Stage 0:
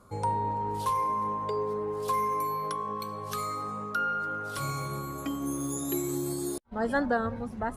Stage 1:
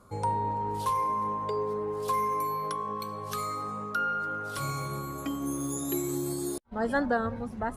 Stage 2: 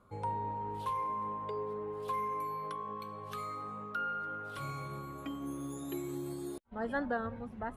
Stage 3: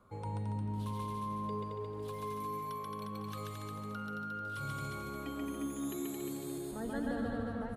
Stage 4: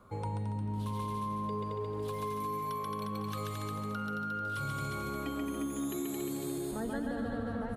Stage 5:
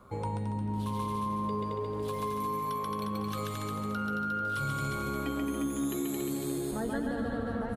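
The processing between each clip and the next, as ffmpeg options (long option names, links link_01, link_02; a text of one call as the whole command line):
ffmpeg -i in.wav -af anull out.wav
ffmpeg -i in.wav -af "highshelf=frequency=4100:width_type=q:width=1.5:gain=-7.5,volume=-7.5dB" out.wav
ffmpeg -i in.wav -filter_complex "[0:a]asplit=2[link_01][link_02];[link_02]aecho=0:1:221|442|663|884|1105:0.668|0.241|0.0866|0.0312|0.0112[link_03];[link_01][link_03]amix=inputs=2:normalize=0,acrossover=split=380|3000[link_04][link_05][link_06];[link_05]acompressor=threshold=-47dB:ratio=5[link_07];[link_04][link_07][link_06]amix=inputs=3:normalize=0,asplit=2[link_08][link_09];[link_09]aecho=0:1:134.1|282.8:0.891|0.398[link_10];[link_08][link_10]amix=inputs=2:normalize=0" out.wav
ffmpeg -i in.wav -af "acompressor=threshold=-38dB:ratio=6,volume=6dB" out.wav
ffmpeg -i in.wav -filter_complex "[0:a]tremolo=f=130:d=0.261,asplit=2[link_01][link_02];[link_02]adelay=15,volume=-12dB[link_03];[link_01][link_03]amix=inputs=2:normalize=0,volume=4dB" out.wav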